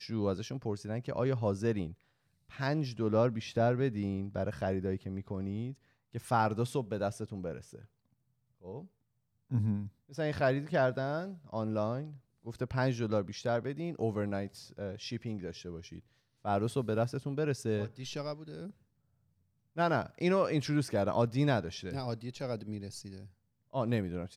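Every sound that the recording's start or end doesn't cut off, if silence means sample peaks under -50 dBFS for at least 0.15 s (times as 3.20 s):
2.50–5.74 s
6.13–7.85 s
8.63–8.86 s
9.51–9.89 s
10.10–12.17 s
12.45–16.00 s
16.45–18.71 s
19.76–23.27 s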